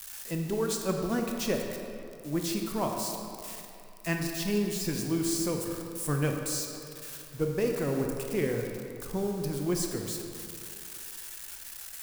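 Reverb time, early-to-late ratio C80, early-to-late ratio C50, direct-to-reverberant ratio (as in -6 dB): 2.6 s, 4.0 dB, 3.0 dB, 2.0 dB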